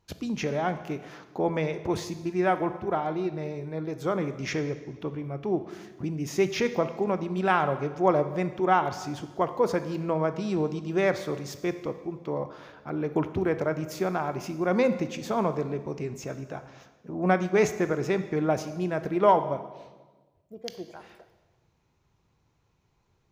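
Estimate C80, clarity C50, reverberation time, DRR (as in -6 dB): 13.5 dB, 11.5 dB, 1.3 s, 10.0 dB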